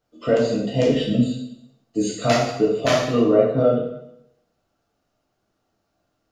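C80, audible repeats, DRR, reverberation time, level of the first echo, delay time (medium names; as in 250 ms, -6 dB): 6.0 dB, no echo, -5.0 dB, 0.80 s, no echo, no echo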